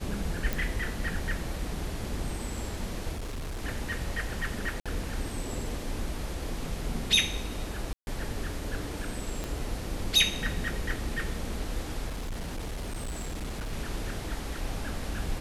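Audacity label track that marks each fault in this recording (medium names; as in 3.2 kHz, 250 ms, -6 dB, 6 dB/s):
0.530000	0.530000	pop
3.120000	3.630000	clipped -32 dBFS
4.800000	4.860000	dropout 56 ms
7.930000	8.070000	dropout 141 ms
9.440000	9.440000	pop -19 dBFS
12.080000	13.730000	clipped -31 dBFS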